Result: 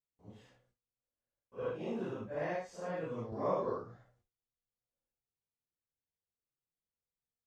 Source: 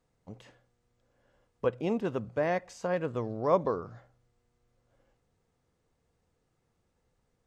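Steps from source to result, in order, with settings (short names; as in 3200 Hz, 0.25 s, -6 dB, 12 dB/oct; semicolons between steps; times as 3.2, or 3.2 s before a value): phase scrambler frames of 0.2 s; gate with hold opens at -57 dBFS; 3.32–3.84 three-band squash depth 40%; gain -7.5 dB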